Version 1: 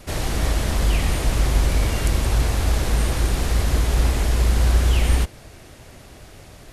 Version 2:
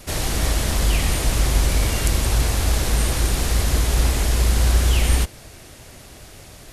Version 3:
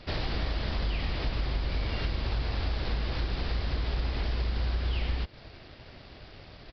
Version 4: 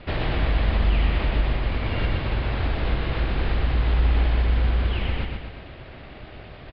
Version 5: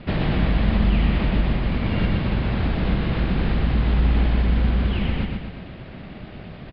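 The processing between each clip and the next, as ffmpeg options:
-af "highshelf=f=3.5k:g=7"
-af "acompressor=threshold=-22dB:ratio=6,aresample=11025,aeval=exprs='sgn(val(0))*max(abs(val(0))-0.00141,0)':c=same,aresample=44100,volume=-4dB"
-af "lowpass=f=3.2k:w=0.5412,lowpass=f=3.2k:w=1.3066,aecho=1:1:121|242|363|484|605|726|847:0.631|0.322|0.164|0.0837|0.0427|0.0218|0.0111,volume=6dB"
-af "equalizer=f=190:t=o:w=0.92:g=13"

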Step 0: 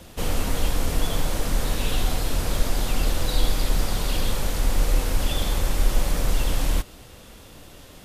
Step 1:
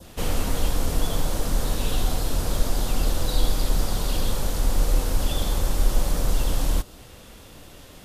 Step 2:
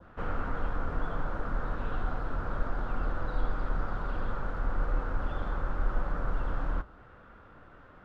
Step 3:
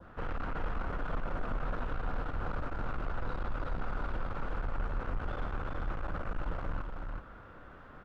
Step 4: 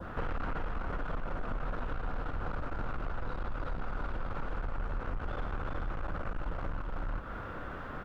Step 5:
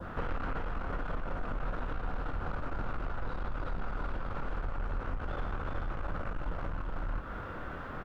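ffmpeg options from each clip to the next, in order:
-af "adynamicequalizer=threshold=0.00398:dfrequency=2200:dqfactor=1.4:tfrequency=2200:tqfactor=1.4:attack=5:release=100:ratio=0.375:range=3:mode=cutabove:tftype=bell"
-af "lowpass=f=1.4k:t=q:w=4.3,flanger=delay=5.8:depth=4.7:regen=-86:speed=1.8:shape=triangular,volume=-4.5dB"
-filter_complex "[0:a]asoftclip=type=tanh:threshold=-31.5dB,asplit=2[a][b];[b]aecho=0:1:375:0.596[c];[a][c]amix=inputs=2:normalize=0,volume=1dB"
-af "acompressor=threshold=-43dB:ratio=5,volume=10.5dB"
-filter_complex "[0:a]asplit=2[a][b];[b]adelay=23,volume=-11dB[c];[a][c]amix=inputs=2:normalize=0"

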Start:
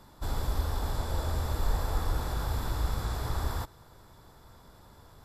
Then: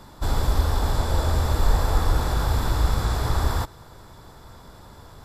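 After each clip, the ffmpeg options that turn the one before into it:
-af "equalizer=f=12k:w=2.6:g=-5,volume=9dB"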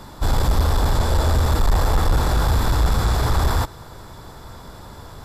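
-af "asoftclip=type=tanh:threshold=-17.5dB,volume=6.5dB"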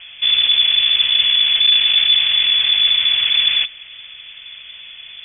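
-af "lowpass=f=3k:t=q:w=0.5098,lowpass=f=3k:t=q:w=0.6013,lowpass=f=3k:t=q:w=0.9,lowpass=f=3k:t=q:w=2.563,afreqshift=-3500,volume=2dB"

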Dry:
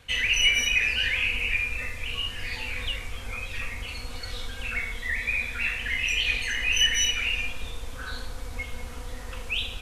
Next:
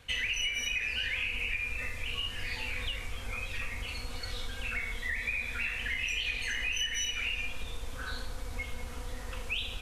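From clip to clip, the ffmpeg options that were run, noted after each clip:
-af "acompressor=threshold=-27dB:ratio=6,volume=-2.5dB"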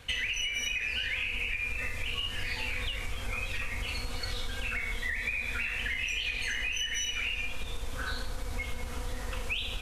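-af "acompressor=threshold=-34dB:ratio=6,volume=5dB"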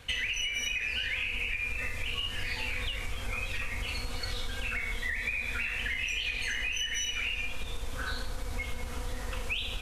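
-af anull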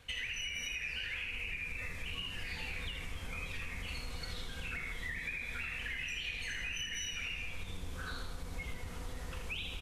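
-filter_complex "[0:a]asplit=6[a][b][c][d][e][f];[b]adelay=80,afreqshift=-94,volume=-7.5dB[g];[c]adelay=160,afreqshift=-188,volume=-14.1dB[h];[d]adelay=240,afreqshift=-282,volume=-20.6dB[i];[e]adelay=320,afreqshift=-376,volume=-27.2dB[j];[f]adelay=400,afreqshift=-470,volume=-33.7dB[k];[a][g][h][i][j][k]amix=inputs=6:normalize=0,volume=-8dB"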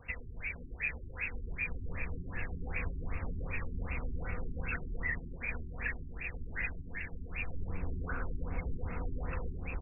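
-af "afftfilt=real='re*lt(b*sr/1024,400*pow(2800/400,0.5+0.5*sin(2*PI*2.6*pts/sr)))':imag='im*lt(b*sr/1024,400*pow(2800/400,0.5+0.5*sin(2*PI*2.6*pts/sr)))':win_size=1024:overlap=0.75,volume=6.5dB"

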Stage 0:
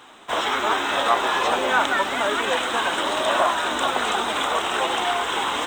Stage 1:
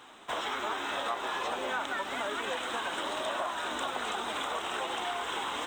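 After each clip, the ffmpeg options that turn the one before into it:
-af "acompressor=threshold=-27dB:ratio=3,volume=-5.5dB"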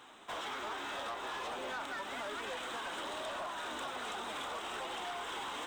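-af "asoftclip=type=tanh:threshold=-32dB,volume=-3.5dB"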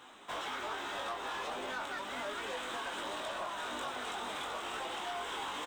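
-filter_complex "[0:a]asplit=2[a][b];[b]adelay=20,volume=-5dB[c];[a][c]amix=inputs=2:normalize=0"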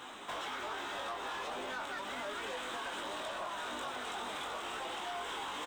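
-af "alimiter=level_in=16.5dB:limit=-24dB:level=0:latency=1:release=346,volume=-16.5dB,volume=7dB"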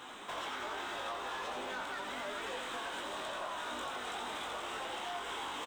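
-af "aecho=1:1:86:0.501,volume=-1dB"

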